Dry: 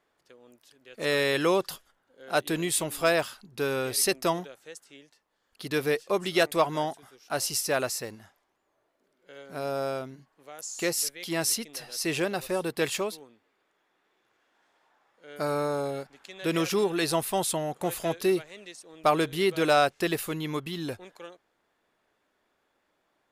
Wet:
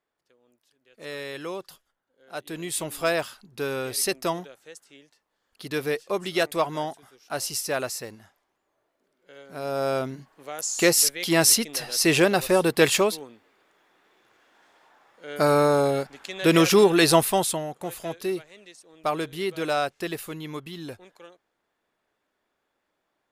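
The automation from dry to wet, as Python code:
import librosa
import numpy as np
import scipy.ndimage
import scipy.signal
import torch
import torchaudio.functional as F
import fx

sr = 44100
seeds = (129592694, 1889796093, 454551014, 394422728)

y = fx.gain(x, sr, db=fx.line((2.34, -10.0), (2.85, -0.5), (9.58, -0.5), (10.06, 9.0), (17.17, 9.0), (17.78, -3.5)))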